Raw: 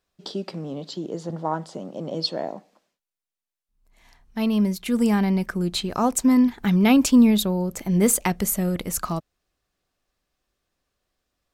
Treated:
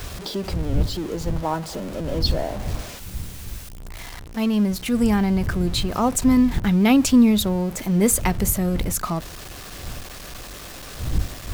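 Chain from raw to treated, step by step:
converter with a step at zero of −31 dBFS
wind on the microphone 82 Hz −29 dBFS

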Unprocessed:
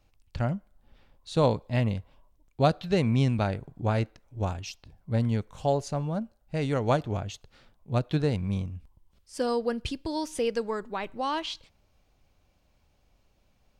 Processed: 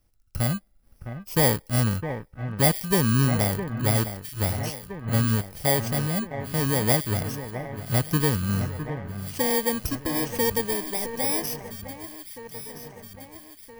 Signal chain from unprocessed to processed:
samples in bit-reversed order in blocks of 32 samples
delay that swaps between a low-pass and a high-pass 659 ms, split 2,300 Hz, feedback 76%, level −10.5 dB
leveller curve on the samples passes 1

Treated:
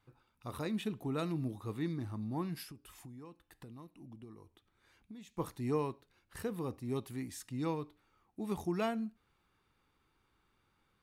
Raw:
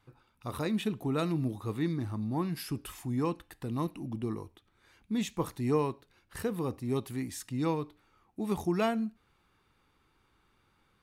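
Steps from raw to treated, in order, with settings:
0:02.63–0:05.38: downward compressor 6 to 1, threshold −44 dBFS, peak gain reduction 16 dB
level −5.5 dB

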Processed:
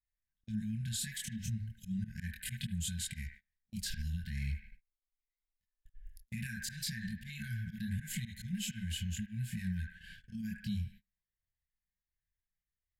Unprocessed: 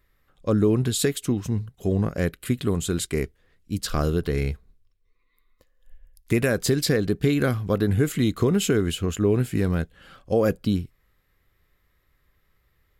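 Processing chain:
multi-voice chorus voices 6, 0.68 Hz, delay 25 ms, depth 2.6 ms
volume swells 173 ms
delay with a band-pass on its return 76 ms, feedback 42%, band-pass 940 Hz, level −4 dB
downward compressor, threshold −32 dBFS, peak gain reduction 12.5 dB
brickwall limiter −28 dBFS, peak gain reduction 6.5 dB
brick-wall band-stop 230–1,500 Hz
noise gate −52 dBFS, range −28 dB
level +1 dB

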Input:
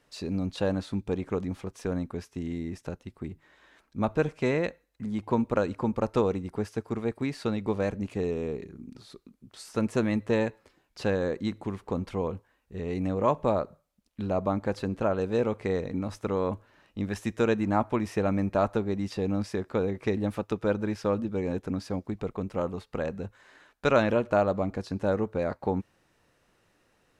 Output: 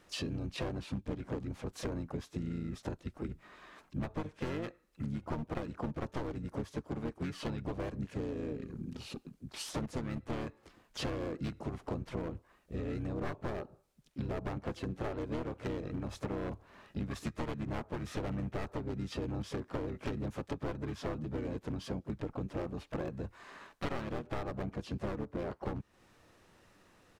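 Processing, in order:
wavefolder on the positive side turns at −24.5 dBFS
pitch-shifted copies added −7 semitones 0 dB, +4 semitones −13 dB, +5 semitones −15 dB
downward compressor 6 to 1, threshold −36 dBFS, peak gain reduction 21 dB
level +1 dB

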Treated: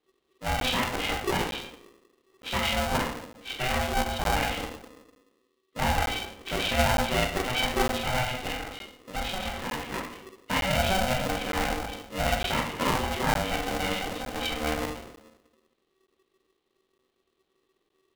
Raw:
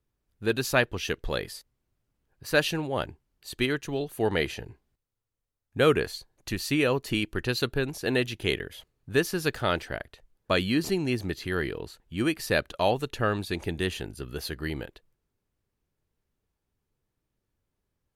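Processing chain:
hearing-aid frequency compression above 2,300 Hz 4 to 1
brickwall limiter −18 dBFS, peak gain reduction 9.5 dB
0:08.29–0:09.94: downward compressor 1.5 to 1, threshold −39 dBFS, peak gain reduction 5.5 dB
rectangular room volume 130 cubic metres, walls mixed, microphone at 1.1 metres
regular buffer underruns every 0.91 s, samples 512, zero, from 0:00.60
ring modulator with a square carrier 380 Hz
level −2.5 dB

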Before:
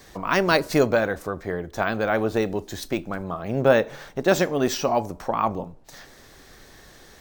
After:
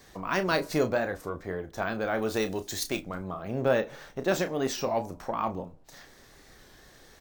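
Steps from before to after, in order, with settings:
0:02.22–0:03.02: high-shelf EQ 2,300 Hz +11.5 dB
in parallel at −9.5 dB: soft clipping −20 dBFS, distortion −8 dB
on the sum: double-tracking delay 32 ms −9.5 dB
wow of a warped record 33 1/3 rpm, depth 100 cents
level −8.5 dB

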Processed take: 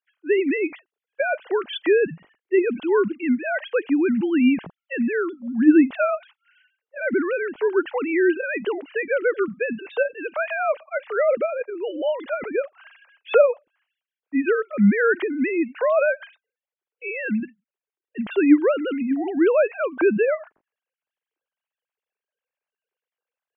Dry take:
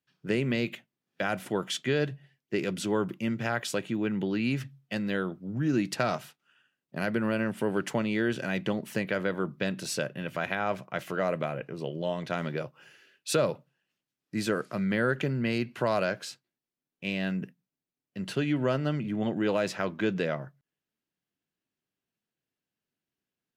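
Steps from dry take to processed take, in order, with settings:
three sine waves on the formant tracks
level +8.5 dB

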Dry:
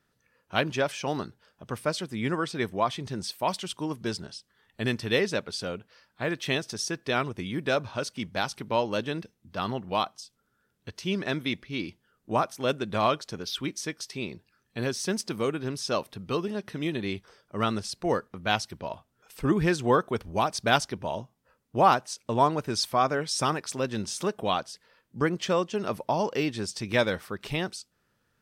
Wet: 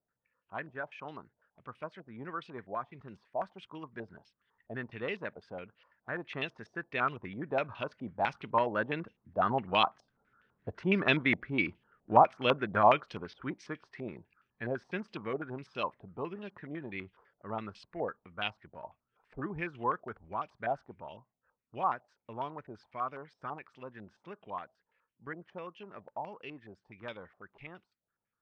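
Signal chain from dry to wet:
source passing by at 0:11.02, 7 m/s, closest 10 metres
low-pass on a step sequencer 12 Hz 690–2,800 Hz

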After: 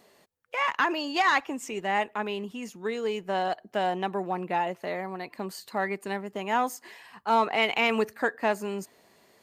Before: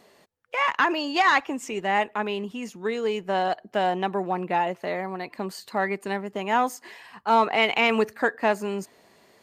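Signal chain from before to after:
high-shelf EQ 8,900 Hz +6 dB
level −3.5 dB

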